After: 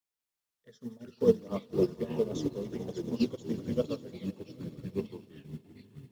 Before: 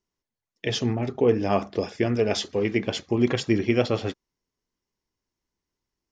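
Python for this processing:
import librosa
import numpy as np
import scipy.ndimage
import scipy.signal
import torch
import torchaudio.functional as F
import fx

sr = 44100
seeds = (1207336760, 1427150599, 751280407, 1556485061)

p1 = fx.env_flanger(x, sr, rest_ms=2.8, full_db=-20.5)
p2 = fx.fixed_phaser(p1, sr, hz=500.0, stages=8)
p3 = fx.quant_dither(p2, sr, seeds[0], bits=8, dither='triangular')
p4 = p2 + F.gain(torch.from_numpy(p3), -9.0).numpy()
p5 = fx.echo_pitch(p4, sr, ms=201, semitones=-4, count=3, db_per_echo=-3.0)
p6 = p5 + fx.echo_swell(p5, sr, ms=87, loudest=5, wet_db=-16.0, dry=0)
p7 = fx.upward_expand(p6, sr, threshold_db=-37.0, expansion=2.5)
y = F.gain(torch.from_numpy(p7), -2.0).numpy()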